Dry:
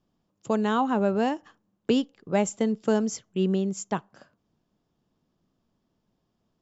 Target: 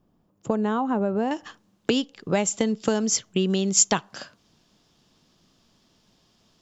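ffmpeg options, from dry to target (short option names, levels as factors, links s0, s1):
-af "acompressor=threshold=0.0355:ratio=6,asetnsamples=n=441:p=0,asendcmd='1.31 equalizer g 8.5;3.5 equalizer g 14.5',equalizer=f=4700:w=0.42:g=-9,volume=2.66"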